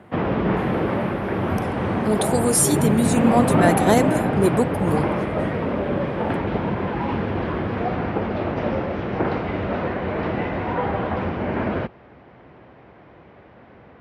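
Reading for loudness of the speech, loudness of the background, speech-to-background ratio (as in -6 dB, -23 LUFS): -21.0 LUFS, -23.5 LUFS, 2.5 dB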